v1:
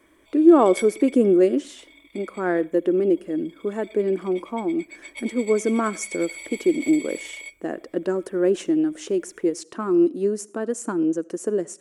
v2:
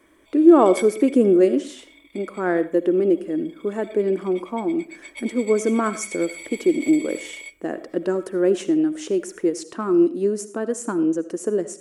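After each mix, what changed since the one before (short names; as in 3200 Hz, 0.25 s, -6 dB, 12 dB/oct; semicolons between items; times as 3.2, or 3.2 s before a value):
speech: send +11.0 dB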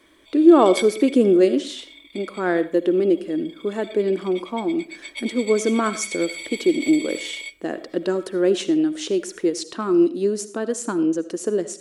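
master: add bell 3900 Hz +11.5 dB 0.98 oct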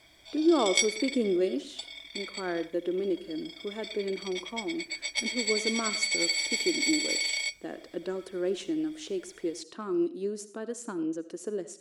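speech -11.5 dB; background: remove fixed phaser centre 1100 Hz, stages 8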